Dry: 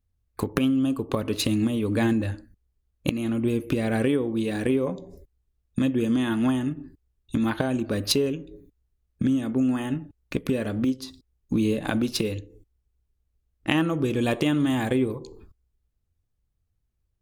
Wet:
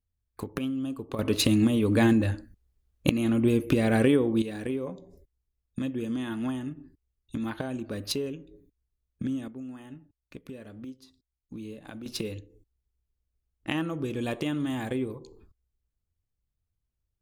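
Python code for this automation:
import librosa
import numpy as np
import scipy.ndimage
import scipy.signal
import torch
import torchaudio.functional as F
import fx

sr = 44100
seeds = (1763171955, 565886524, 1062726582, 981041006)

y = fx.gain(x, sr, db=fx.steps((0.0, -8.5), (1.19, 1.5), (4.42, -8.0), (9.48, -17.0), (12.06, -7.0)))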